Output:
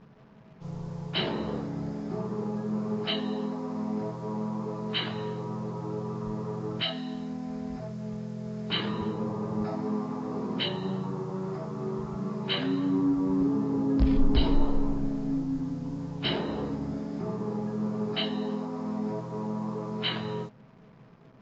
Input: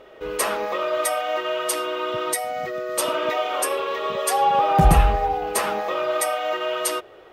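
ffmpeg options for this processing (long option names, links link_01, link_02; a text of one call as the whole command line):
ffmpeg -i in.wav -af "acrusher=bits=7:mix=0:aa=0.5,asetrate=15082,aresample=44100,volume=-7.5dB" out.wav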